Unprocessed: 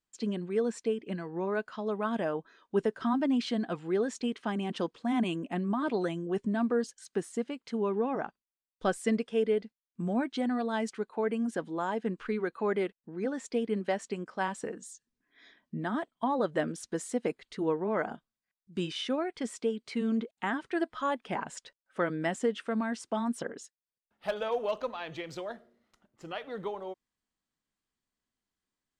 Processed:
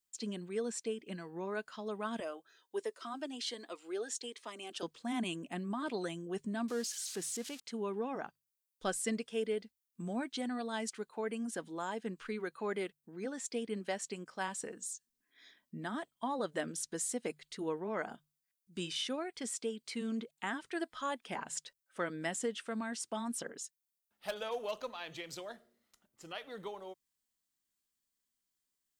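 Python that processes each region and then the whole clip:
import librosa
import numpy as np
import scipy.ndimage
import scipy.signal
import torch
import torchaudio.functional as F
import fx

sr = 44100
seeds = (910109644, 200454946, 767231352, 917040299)

y = fx.chain(x, sr, fx.highpass(hz=340.0, slope=24),
    fx.notch_cascade(direction='rising', hz=1.3), at=(2.2, 4.83))
y = fx.chain(y, sr, fx.crossing_spikes(level_db=-32.0),
    fx.lowpass(hz=5200.0, slope=12),
    fx.transient(attack_db=-3, sustain_db=1), at=(6.68, 7.6))
y = scipy.signal.lfilter([1.0, -0.8], [1.0], y)
y = fx.hum_notches(y, sr, base_hz=50, count=3)
y = F.gain(torch.from_numpy(y), 6.0).numpy()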